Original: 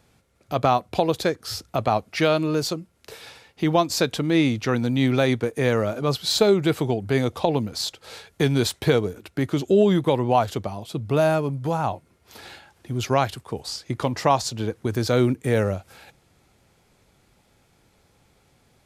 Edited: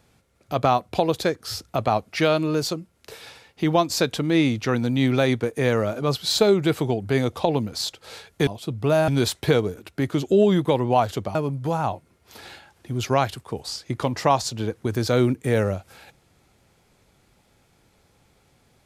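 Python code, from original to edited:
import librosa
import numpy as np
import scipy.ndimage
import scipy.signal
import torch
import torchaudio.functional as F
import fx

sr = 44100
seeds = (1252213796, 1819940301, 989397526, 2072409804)

y = fx.edit(x, sr, fx.move(start_s=10.74, length_s=0.61, to_s=8.47), tone=tone)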